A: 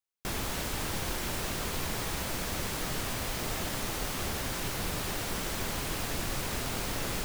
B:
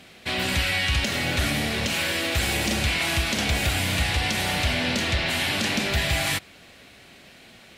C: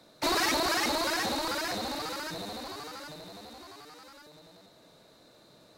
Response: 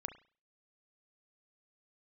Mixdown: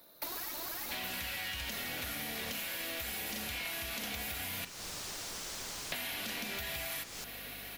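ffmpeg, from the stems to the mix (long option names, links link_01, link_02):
-filter_complex "[0:a]equalizer=frequency=5800:width_type=o:width=1.5:gain=9,volume=-11.5dB,asplit=2[link_01][link_02];[link_02]volume=-6dB[link_03];[1:a]aecho=1:1:4.2:0.32,aeval=exprs='val(0)+0.00282*(sin(2*PI*50*n/s)+sin(2*PI*2*50*n/s)/2+sin(2*PI*3*50*n/s)/3+sin(2*PI*4*50*n/s)/4+sin(2*PI*5*50*n/s)/5)':channel_layout=same,adelay=650,volume=0dB,asplit=3[link_04][link_05][link_06];[link_04]atrim=end=4.65,asetpts=PTS-STARTPTS,afade=type=out:start_time=4.646:duration=0.004:curve=hsin[link_07];[link_05]atrim=start=4.65:end=5.92,asetpts=PTS-STARTPTS,volume=0[link_08];[link_06]atrim=start=5.92,asetpts=PTS-STARTPTS,afade=type=in:duration=0.004:curve=hsin[link_09];[link_07][link_08][link_09]concat=n=3:v=0:a=1,asplit=2[link_10][link_11];[link_11]volume=-6.5dB[link_12];[2:a]aeval=exprs='if(lt(val(0),0),0.708*val(0),val(0))':channel_layout=same,volume=-2.5dB[link_13];[link_10][link_13]amix=inputs=2:normalize=0,aexciter=amount=12.4:drive=5.1:freq=11000,acompressor=threshold=-29dB:ratio=6,volume=0dB[link_14];[3:a]atrim=start_sample=2205[link_15];[link_03][link_12]amix=inputs=2:normalize=0[link_16];[link_16][link_15]afir=irnorm=-1:irlink=0[link_17];[link_01][link_14][link_17]amix=inputs=3:normalize=0,lowshelf=frequency=290:gain=-8,acompressor=threshold=-37dB:ratio=6"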